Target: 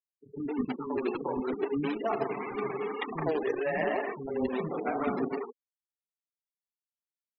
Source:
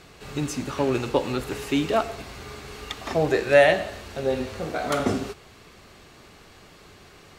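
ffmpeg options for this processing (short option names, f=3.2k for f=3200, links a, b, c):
-filter_complex "[0:a]agate=range=-10dB:threshold=-42dB:ratio=16:detection=peak,highpass=f=160:w=0.5412,highpass=f=160:w=1.3066,equalizer=f=250:t=q:w=4:g=6,equalizer=f=410:t=q:w=4:g=7,equalizer=f=600:t=q:w=4:g=-6,equalizer=f=960:t=q:w=4:g=5,equalizer=f=1.5k:t=q:w=4:g=-5,lowpass=f=2.5k:w=0.5412,lowpass=f=2.5k:w=1.3066,bandreject=f=60:t=h:w=6,bandreject=f=120:t=h:w=6,bandreject=f=180:t=h:w=6,bandreject=f=240:t=h:w=6,dynaudnorm=f=290:g=9:m=11dB,alimiter=limit=-12dB:level=0:latency=1:release=31,areverse,acompressor=threshold=-30dB:ratio=8,areverse,flanger=delay=2.6:depth=4.4:regen=-6:speed=2:shape=sinusoidal,acrusher=bits=2:mode=log:mix=0:aa=0.000001,aeval=exprs='sgn(val(0))*max(abs(val(0))-0.00211,0)':c=same,afftfilt=real='re*gte(hypot(re,im),0.0112)':imag='im*gte(hypot(re,im),0.0112)':win_size=1024:overlap=0.75,acrossover=split=300[a][b];[b]adelay=110[c];[a][c]amix=inputs=2:normalize=0,volume=7dB"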